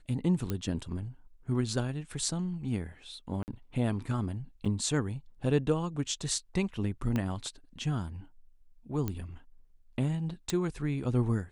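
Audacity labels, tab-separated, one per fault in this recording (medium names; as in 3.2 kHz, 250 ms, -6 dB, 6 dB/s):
0.500000	0.500000	pop -18 dBFS
3.430000	3.480000	dropout 49 ms
4.650000	4.660000	dropout 6 ms
7.160000	7.160000	pop -18 dBFS
9.080000	9.080000	pop -19 dBFS
10.500000	10.500000	pop -17 dBFS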